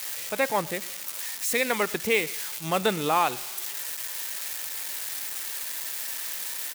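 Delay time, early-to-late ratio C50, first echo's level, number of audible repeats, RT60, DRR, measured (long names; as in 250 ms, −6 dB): 113 ms, no reverb audible, −23.0 dB, 1, no reverb audible, no reverb audible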